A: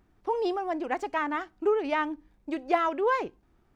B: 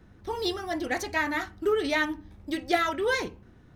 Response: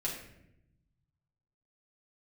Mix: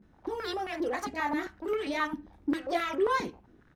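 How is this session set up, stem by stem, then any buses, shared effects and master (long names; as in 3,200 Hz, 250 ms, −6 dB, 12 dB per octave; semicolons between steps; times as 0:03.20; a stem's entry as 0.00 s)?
+2.0 dB, 0.00 s, no send, downward compressor, threshold −32 dBFS, peak gain reduction 13.5 dB; leveller curve on the samples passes 5; band-pass on a step sequencer 7.5 Hz 210–2,300 Hz
−7.5 dB, 21 ms, no send, no processing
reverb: not used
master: parametric band 100 Hz −8 dB 0.26 octaves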